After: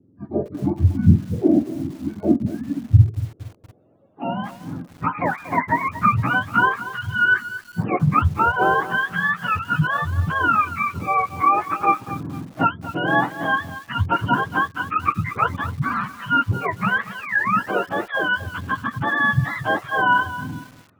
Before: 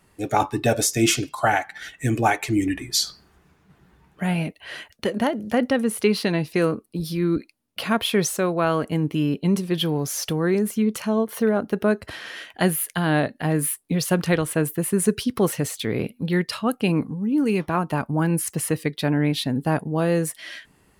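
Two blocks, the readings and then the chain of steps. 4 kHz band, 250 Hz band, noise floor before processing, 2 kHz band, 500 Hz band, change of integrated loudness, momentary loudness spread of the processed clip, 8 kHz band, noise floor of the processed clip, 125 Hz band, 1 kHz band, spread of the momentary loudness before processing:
-6.0 dB, -2.5 dB, -60 dBFS, +9.5 dB, -5.5 dB, +2.0 dB, 11 LU, under -20 dB, -51 dBFS, +4.0 dB, +8.0 dB, 7 LU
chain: spectrum mirrored in octaves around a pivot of 710 Hz; low-pass sweep 320 Hz -> 1400 Hz, 3.04–4.74; lo-fi delay 0.232 s, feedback 35%, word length 6-bit, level -13.5 dB; gain +1.5 dB

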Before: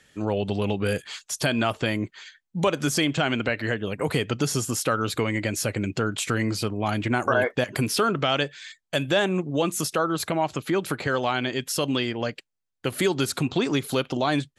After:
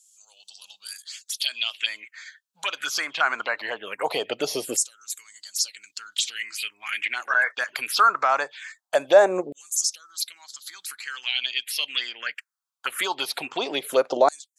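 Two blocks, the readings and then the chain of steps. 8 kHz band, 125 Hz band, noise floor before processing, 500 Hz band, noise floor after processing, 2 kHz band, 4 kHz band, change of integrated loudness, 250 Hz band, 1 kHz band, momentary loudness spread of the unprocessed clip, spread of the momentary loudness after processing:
+3.0 dB, under -25 dB, -79 dBFS, 0.0 dB, -82 dBFS, +2.0 dB, +2.5 dB, +0.5 dB, -14.0 dB, +2.0 dB, 6 LU, 17 LU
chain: LFO high-pass saw down 0.21 Hz 500–7500 Hz; envelope phaser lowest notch 300 Hz, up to 3100 Hz, full sweep at -21 dBFS; gain +4 dB

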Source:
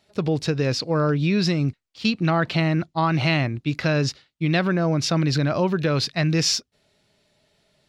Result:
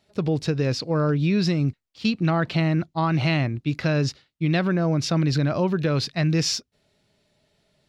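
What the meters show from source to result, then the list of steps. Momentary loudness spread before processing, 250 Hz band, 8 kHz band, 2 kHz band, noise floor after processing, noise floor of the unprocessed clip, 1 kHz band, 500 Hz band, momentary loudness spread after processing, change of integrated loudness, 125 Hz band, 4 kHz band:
5 LU, -0.5 dB, -3.5 dB, -3.5 dB, -75 dBFS, -72 dBFS, -2.5 dB, -1.5 dB, 5 LU, -1.0 dB, 0.0 dB, -3.5 dB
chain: low shelf 460 Hz +4 dB; gain -3.5 dB

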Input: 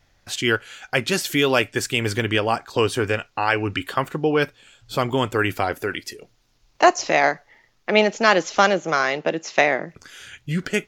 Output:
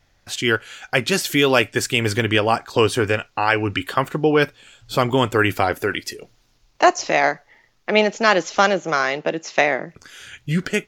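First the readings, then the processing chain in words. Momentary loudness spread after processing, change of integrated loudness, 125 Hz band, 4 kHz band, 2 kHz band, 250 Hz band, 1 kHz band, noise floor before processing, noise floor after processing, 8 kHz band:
8 LU, +1.5 dB, +3.0 dB, +2.0 dB, +1.5 dB, +2.0 dB, +1.5 dB, -62 dBFS, -61 dBFS, +1.5 dB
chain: AGC gain up to 5 dB

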